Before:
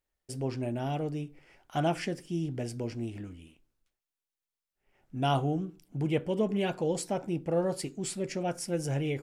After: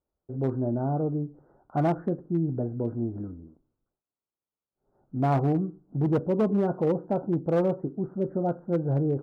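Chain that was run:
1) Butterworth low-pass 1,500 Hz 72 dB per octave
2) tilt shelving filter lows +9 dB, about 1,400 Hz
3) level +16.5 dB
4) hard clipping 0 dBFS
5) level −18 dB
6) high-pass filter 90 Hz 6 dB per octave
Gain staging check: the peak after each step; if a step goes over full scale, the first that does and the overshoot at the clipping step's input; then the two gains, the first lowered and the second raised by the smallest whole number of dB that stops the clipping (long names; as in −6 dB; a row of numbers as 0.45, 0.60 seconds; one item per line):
−17.0, −10.0, +6.5, 0.0, −18.0, −14.5 dBFS
step 3, 6.5 dB
step 3 +9.5 dB, step 5 −11 dB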